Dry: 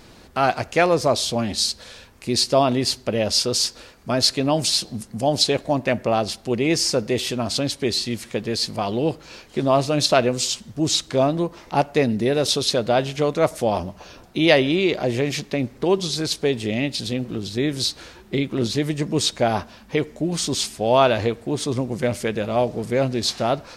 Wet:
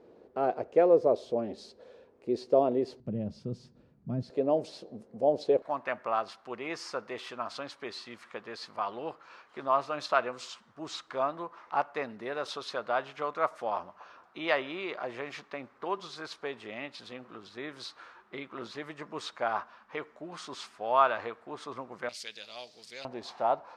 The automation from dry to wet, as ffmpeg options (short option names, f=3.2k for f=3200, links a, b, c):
-af "asetnsamples=n=441:p=0,asendcmd='3 bandpass f 160;4.3 bandpass f 490;5.62 bandpass f 1200;22.09 bandpass f 4500;23.05 bandpass f 890',bandpass=f=450:t=q:w=2.8:csg=0"